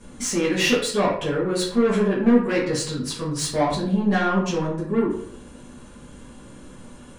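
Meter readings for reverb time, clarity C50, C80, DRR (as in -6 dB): 0.65 s, 4.5 dB, 8.0 dB, -9.0 dB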